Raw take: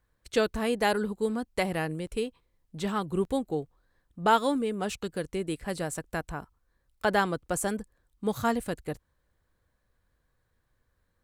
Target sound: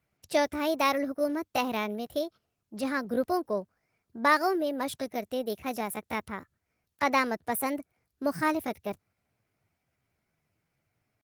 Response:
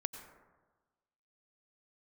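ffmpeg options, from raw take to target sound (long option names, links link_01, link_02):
-af "asetrate=58866,aresample=44100,atempo=0.749154,highpass=frequency=91:width=0.5412,highpass=frequency=91:width=1.3066" -ar 48000 -c:a libopus -b:a 24k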